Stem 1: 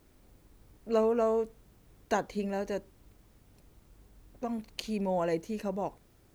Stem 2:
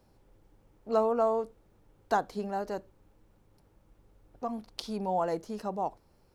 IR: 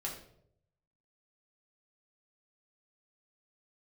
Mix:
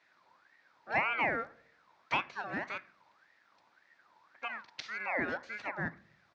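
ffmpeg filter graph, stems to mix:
-filter_complex "[0:a]highpass=900,acompressor=threshold=0.00631:ratio=6,volume=1.12[s0];[1:a]equalizer=f=2800:t=o:w=2.8:g=5,aeval=exprs='val(0)*sin(2*PI*1400*n/s+1400*0.35/1.8*sin(2*PI*1.8*n/s))':c=same,adelay=3.5,volume=0.708,asplit=2[s1][s2];[s2]volume=0.178[s3];[2:a]atrim=start_sample=2205[s4];[s3][s4]afir=irnorm=-1:irlink=0[s5];[s0][s1][s5]amix=inputs=3:normalize=0,highpass=110,equalizer=f=440:t=q:w=4:g=-6,equalizer=f=1200:t=q:w=4:g=-3,equalizer=f=3000:t=q:w=4:g=-6,lowpass=f=4700:w=0.5412,lowpass=f=4700:w=1.3066"

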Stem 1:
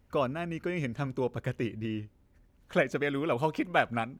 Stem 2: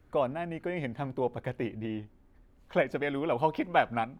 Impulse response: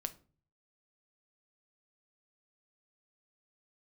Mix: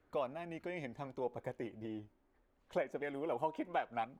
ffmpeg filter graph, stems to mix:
-filter_complex "[0:a]acompressor=threshold=0.0126:ratio=2,volume=0.376[s0];[1:a]aemphasis=mode=reproduction:type=50fm,aphaser=in_gain=1:out_gain=1:delay=3.2:decay=0.22:speed=0.7:type=sinusoidal,bass=f=250:g=-13,treble=f=4000:g=1,volume=-1,volume=0.501,asplit=2[s1][s2];[s2]apad=whole_len=184995[s3];[s0][s3]sidechaingate=range=0.0224:threshold=0.001:ratio=16:detection=peak[s4];[s4][s1]amix=inputs=2:normalize=0,alimiter=limit=0.0631:level=0:latency=1:release=256"

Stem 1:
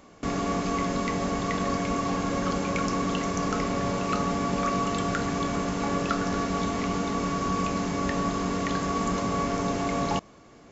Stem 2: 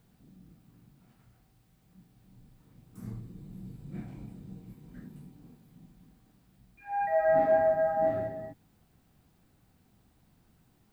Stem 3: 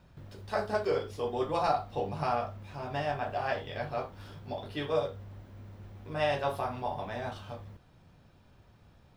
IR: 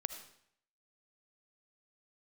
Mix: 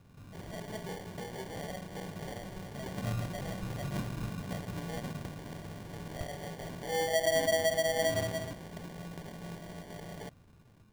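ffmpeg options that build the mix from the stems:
-filter_complex "[0:a]highpass=980,adelay=100,volume=0.299[s0];[1:a]lowpass=f=1100:p=1,equalizer=f=99:t=o:w=0.85:g=6.5,volume=0.841,asplit=2[s1][s2];[s2]volume=0.708[s3];[2:a]acompressor=threshold=0.0158:ratio=4,volume=0.531[s4];[3:a]atrim=start_sample=2205[s5];[s3][s5]afir=irnorm=-1:irlink=0[s6];[s0][s1][s4][s6]amix=inputs=4:normalize=0,acrusher=samples=34:mix=1:aa=0.000001,acompressor=threshold=0.0398:ratio=3"

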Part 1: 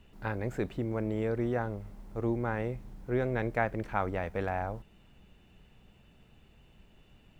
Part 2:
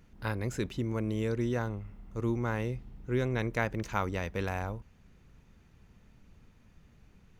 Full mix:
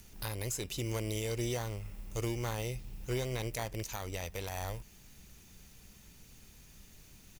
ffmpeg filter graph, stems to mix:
-filter_complex "[0:a]lowshelf=f=280:g=7,acrusher=samples=17:mix=1:aa=0.000001,volume=0.562[s0];[1:a]highshelf=f=2300:g=10,acrossover=split=240[s1][s2];[s2]acompressor=threshold=0.0224:ratio=6[s3];[s1][s3]amix=inputs=2:normalize=0,crystalizer=i=8:c=0,adelay=0.5,volume=0.398[s4];[s0][s4]amix=inputs=2:normalize=0,alimiter=level_in=1.12:limit=0.0631:level=0:latency=1:release=433,volume=0.891"

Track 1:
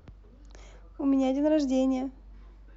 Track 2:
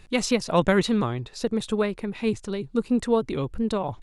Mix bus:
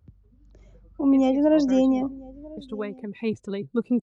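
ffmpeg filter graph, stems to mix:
-filter_complex "[0:a]lowshelf=f=140:g=6,dynaudnorm=f=220:g=5:m=1.68,volume=1,asplit=3[s0][s1][s2];[s1]volume=0.0794[s3];[1:a]adelay=1000,volume=0.944,asplit=3[s4][s5][s6];[s4]atrim=end=2.07,asetpts=PTS-STARTPTS,afade=t=out:st=2.066:d=0.004:c=hsin[s7];[s5]atrim=start=2.07:end=2.57,asetpts=PTS-STARTPTS,volume=0[s8];[s6]atrim=start=2.57,asetpts=PTS-STARTPTS,afade=t=in:d=0.004:c=hsin[s9];[s7][s8][s9]concat=n=3:v=0:a=1[s10];[s2]apad=whole_len=221415[s11];[s10][s11]sidechaincompress=threshold=0.02:ratio=10:attack=37:release=1240[s12];[s3]aecho=0:1:994:1[s13];[s0][s12][s13]amix=inputs=3:normalize=0,afftdn=nr=17:nf=-41,highpass=94"

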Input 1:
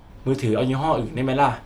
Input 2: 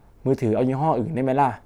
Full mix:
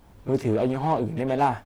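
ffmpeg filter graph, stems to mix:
-filter_complex "[0:a]asoftclip=type=tanh:threshold=0.0562,volume=0.398[s0];[1:a]adelay=26,volume=0.75[s1];[s0][s1]amix=inputs=2:normalize=0,acrusher=bits=10:mix=0:aa=0.000001"

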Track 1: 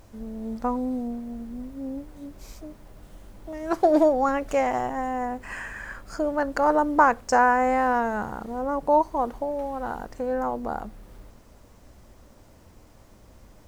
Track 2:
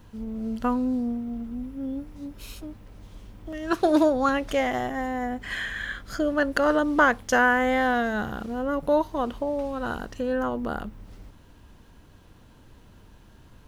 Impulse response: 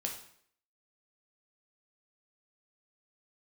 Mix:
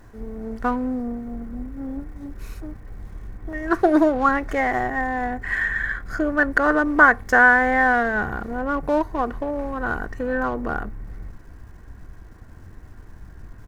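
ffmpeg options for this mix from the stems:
-filter_complex "[0:a]asubboost=boost=7:cutoff=160,alimiter=limit=0.168:level=0:latency=1:release=191,aeval=exprs='(tanh(56.2*val(0)+0.6)-tanh(0.6))/56.2':c=same,volume=0.891[s0];[1:a]highshelf=f=2400:t=q:w=3:g=-8,aecho=1:1:2.7:0.37,adelay=1.9,volume=1.26[s1];[s0][s1]amix=inputs=2:normalize=0"

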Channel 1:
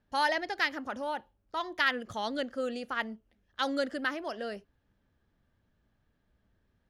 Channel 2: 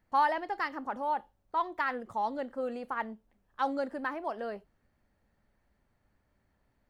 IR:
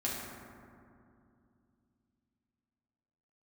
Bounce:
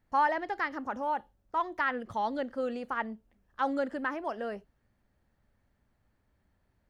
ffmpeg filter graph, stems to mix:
-filter_complex "[0:a]lowpass=9300,lowshelf=f=190:g=6.5,volume=0.422[s0];[1:a]volume=0.794[s1];[s0][s1]amix=inputs=2:normalize=0,acrossover=split=2600[s2][s3];[s3]acompressor=threshold=0.00282:ratio=4:attack=1:release=60[s4];[s2][s4]amix=inputs=2:normalize=0"

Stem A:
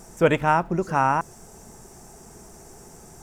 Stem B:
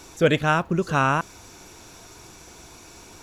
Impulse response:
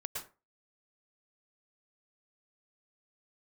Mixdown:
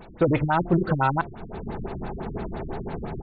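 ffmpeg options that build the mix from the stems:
-filter_complex "[0:a]bandreject=f=350.7:t=h:w=4,bandreject=f=701.4:t=h:w=4,dynaudnorm=f=200:g=3:m=5.62,alimiter=limit=0.224:level=0:latency=1:release=12,volume=1.12[s0];[1:a]volume=14.1,asoftclip=hard,volume=0.0708,volume=-1,adelay=4.4,volume=0.794[s1];[s0][s1]amix=inputs=2:normalize=0,afftfilt=real='re*lt(b*sr/1024,320*pow(4600/320,0.5+0.5*sin(2*PI*5.9*pts/sr)))':imag='im*lt(b*sr/1024,320*pow(4600/320,0.5+0.5*sin(2*PI*5.9*pts/sr)))':win_size=1024:overlap=0.75"

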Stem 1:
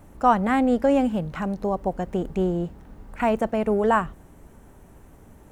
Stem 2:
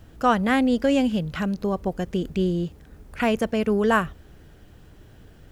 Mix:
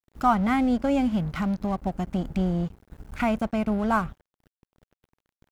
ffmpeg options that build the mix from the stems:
-filter_complex "[0:a]lowpass=f=2300:w=0.5412,lowpass=f=2300:w=1.3066,equalizer=f=830:t=o:w=2:g=-3.5,aecho=1:1:1.4:0.31,volume=0.891[s0];[1:a]acompressor=threshold=0.0126:ratio=2,adelay=1.1,volume=1.41[s1];[s0][s1]amix=inputs=2:normalize=0,agate=range=0.0224:threshold=0.0158:ratio=3:detection=peak,acompressor=mode=upward:threshold=0.00708:ratio=2.5,aeval=exprs='sgn(val(0))*max(abs(val(0))-0.00841,0)':c=same"

